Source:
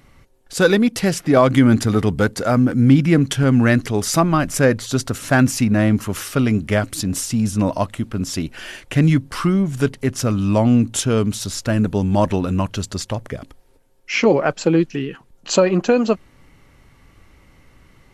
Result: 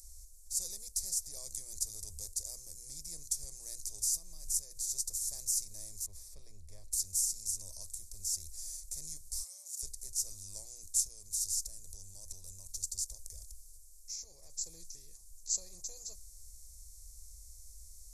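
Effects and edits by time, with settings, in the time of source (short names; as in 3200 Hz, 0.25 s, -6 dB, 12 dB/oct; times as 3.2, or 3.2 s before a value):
3.99–4.85 compressor, threshold -20 dBFS
6.06–6.92 air absorption 480 m
9.42–9.83 Chebyshev high-pass 540 Hz, order 10
11.07–14.58 compressor, threshold -22 dBFS
whole clip: per-bin compression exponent 0.6; inverse Chebyshev band-stop 110–3200 Hz, stop band 40 dB; gain -7 dB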